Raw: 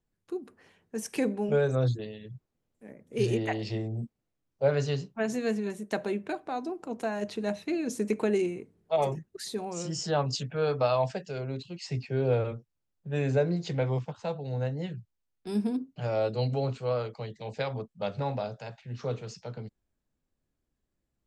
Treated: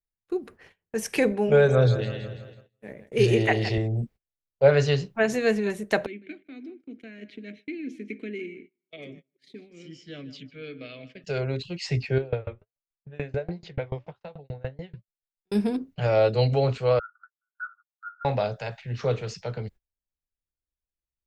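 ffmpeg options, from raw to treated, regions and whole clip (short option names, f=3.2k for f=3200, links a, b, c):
-filter_complex "[0:a]asettb=1/sr,asplit=3[a][b][c];[a]atrim=end=1.314[d];[b]atrim=start=1.31:end=3.78,asetpts=PTS-STARTPTS,afade=t=in:d=0.004:c=qsin,afade=t=out:st=2.466:d=0.004:c=qsin,highpass=49,aecho=1:1:165|330|495|660|825|990:0.251|0.138|0.076|0.0418|0.023|0.0126,atrim=end_sample=108927[e];[c]atrim=start=3.776[f];[d][e]acrossfade=d=0.004:c1=hsin:c2=qsin[g];[g][f]acrossfade=d=0.004:c1=qsin:c2=hsin,asettb=1/sr,asplit=3[h][i][j];[h]atrim=end=6.064[k];[i]atrim=start=6.06:end=11.24,asetpts=PTS-STARTPTS,afade=t=in:d=0.004:c=qsin,afade=t=out:st=5.176:d=0.004:c=qsin,asplit=3[l][m][n];[l]bandpass=f=270:t=q:w=8,volume=0dB[o];[m]bandpass=f=2.29k:t=q:w=8,volume=-6dB[p];[n]bandpass=f=3.01k:t=q:w=8,volume=-9dB[q];[o][p][q]amix=inputs=3:normalize=0,asplit=2[r][s];[s]adelay=154,lowpass=f=4.1k:p=1,volume=-15dB,asplit=2[t][u];[u]adelay=154,lowpass=f=4.1k:p=1,volume=0.33,asplit=2[v][w];[w]adelay=154,lowpass=f=4.1k:p=1,volume=0.33[x];[r][t][v][x]amix=inputs=4:normalize=0,atrim=end_sample=228438[y];[j]atrim=start=11.236[z];[k][y]acrossfade=d=0.004:c1=hsin:c2=qsin[aa];[aa][z]acrossfade=d=0.004:c1=qsin:c2=hsin,asettb=1/sr,asplit=3[ab][ac][ad];[ab]atrim=end=12.184[ae];[ac]atrim=start=12.18:end=15.52,asetpts=PTS-STARTPTS,afade=t=in:d=0.004:c=qsin,afade=t=out:st=3.336:d=0.004:c=qsin,lowpass=4.3k,flanger=delay=4.5:depth=7.2:regen=87:speed=1.4:shape=triangular,aeval=exprs='val(0)*pow(10,-26*if(lt(mod(6.9*n/s,1),2*abs(6.9)/1000),1-mod(6.9*n/s,1)/(2*abs(6.9)/1000),(mod(6.9*n/s,1)-2*abs(6.9)/1000)/(1-2*abs(6.9)/1000))/20)':c=same[af];[ad]atrim=start=15.516[ag];[ae][af]acrossfade=d=0.004:c1=hsin:c2=qsin[ah];[ah][ag]acrossfade=d=0.004:c1=qsin:c2=hsin,asettb=1/sr,asplit=3[ai][aj][ak];[ai]atrim=end=16.994[al];[aj]atrim=start=16.99:end=18.25,asetpts=PTS-STARTPTS,afade=t=in:d=0.004:c=qsin,afade=t=out:st=1.256:d=0.004:c=qsin,asuperpass=centerf=1400:order=8:qfactor=5.8,aecho=1:1:3.5:0.67,atrim=end_sample=55566[am];[ak]atrim=start=18.246[an];[al][am]acrossfade=d=0.004:c1=hsin:c2=qsin[ao];[ao][an]acrossfade=d=0.004:c1=qsin:c2=hsin,equalizer=f=125:t=o:w=1:g=-7,equalizer=f=250:t=o:w=1:g=-10,equalizer=f=1k:t=o:w=1:g=-3,equalizer=f=2k:t=o:w=1:g=4,equalizer=f=8k:t=o:w=1:g=-5,agate=range=-26dB:threshold=-58dB:ratio=16:detection=peak,lowshelf=f=320:g=8.5,volume=8dB"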